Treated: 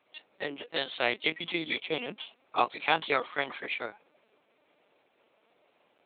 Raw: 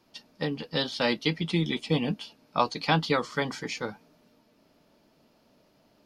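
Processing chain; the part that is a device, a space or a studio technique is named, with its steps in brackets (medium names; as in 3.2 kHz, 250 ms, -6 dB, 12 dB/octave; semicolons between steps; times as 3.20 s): talking toy (LPC vocoder at 8 kHz pitch kept; high-pass 420 Hz 12 dB/octave; peaking EQ 2.3 kHz +5.5 dB 0.36 oct)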